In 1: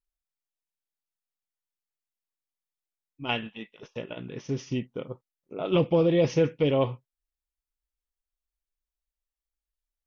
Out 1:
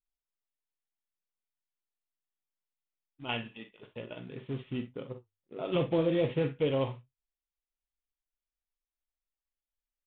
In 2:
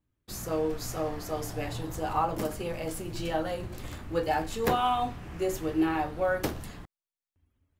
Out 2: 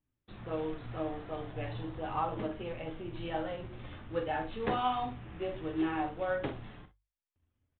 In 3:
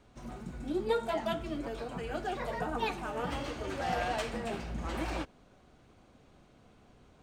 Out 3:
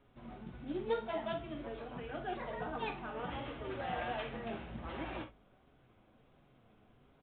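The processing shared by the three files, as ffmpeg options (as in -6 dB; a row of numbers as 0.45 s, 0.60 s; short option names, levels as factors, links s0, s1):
-filter_complex "[0:a]acrusher=bits=4:mode=log:mix=0:aa=0.000001,bandreject=f=50:t=h:w=6,bandreject=f=100:t=h:w=6,flanger=delay=7.2:depth=2.3:regen=66:speed=1.4:shape=sinusoidal,asplit=2[s0][s1];[s1]aecho=0:1:44|60:0.266|0.188[s2];[s0][s2]amix=inputs=2:normalize=0,aresample=8000,aresample=44100,volume=0.841"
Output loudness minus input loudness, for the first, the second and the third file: -6.0 LU, -5.5 LU, -5.5 LU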